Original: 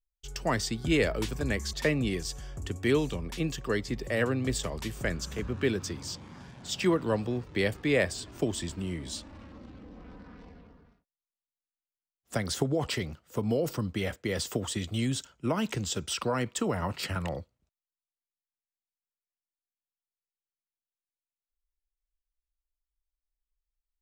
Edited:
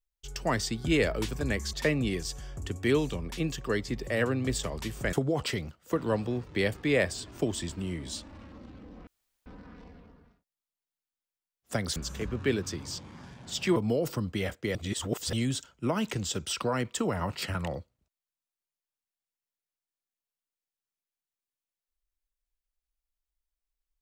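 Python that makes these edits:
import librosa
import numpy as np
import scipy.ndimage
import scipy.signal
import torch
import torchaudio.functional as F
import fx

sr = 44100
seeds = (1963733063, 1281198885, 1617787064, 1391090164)

y = fx.edit(x, sr, fx.swap(start_s=5.13, length_s=1.8, other_s=12.57, other_length_s=0.8),
    fx.insert_room_tone(at_s=10.07, length_s=0.39),
    fx.reverse_span(start_s=14.36, length_s=0.58), tone=tone)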